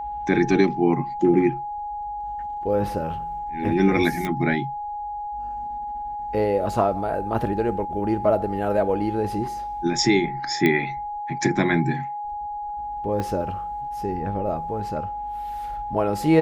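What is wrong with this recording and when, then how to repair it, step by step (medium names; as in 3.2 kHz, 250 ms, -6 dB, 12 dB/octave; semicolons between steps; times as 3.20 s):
whine 830 Hz -28 dBFS
4.25 s: pop -13 dBFS
10.66 s: pop -9 dBFS
13.20 s: pop -16 dBFS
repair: de-click; band-stop 830 Hz, Q 30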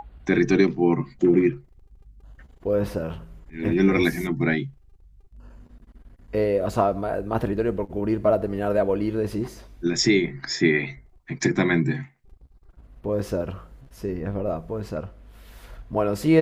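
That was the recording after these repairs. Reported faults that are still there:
13.20 s: pop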